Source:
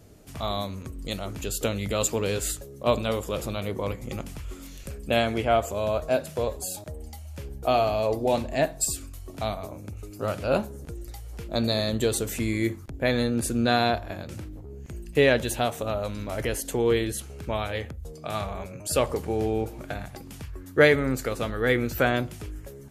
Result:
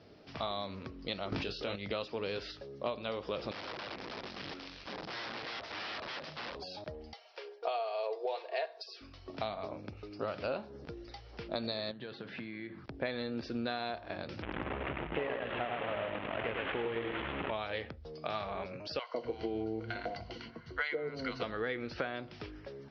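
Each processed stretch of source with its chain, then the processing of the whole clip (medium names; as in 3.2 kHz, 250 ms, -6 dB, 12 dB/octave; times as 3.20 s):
1.32–1.76 s: doubling 21 ms -6 dB + level flattener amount 100%
3.51–6.55 s: compression, threshold -32 dBFS + integer overflow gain 35 dB + loudspeaker Doppler distortion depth 0.29 ms
7.13–9.01 s: brick-wall FIR high-pass 340 Hz + comb 4.3 ms, depth 50%
11.91–12.84 s: compression 12:1, threshold -36 dBFS + cabinet simulation 120–4100 Hz, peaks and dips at 130 Hz +8 dB, 190 Hz +8 dB, 450 Hz -3 dB, 1.6 kHz +9 dB
14.42–17.51 s: one-bit delta coder 16 kbps, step -24 dBFS + feedback delay 104 ms, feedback 27%, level -3 dB + transformer saturation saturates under 440 Hz
18.99–21.43 s: rippled EQ curve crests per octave 1.9, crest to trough 12 dB + three bands offset in time highs, mids, lows 150/250 ms, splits 160/810 Hz
whole clip: high-pass 330 Hz 6 dB/octave; compression 16:1, threshold -32 dBFS; steep low-pass 5.4 kHz 96 dB/octave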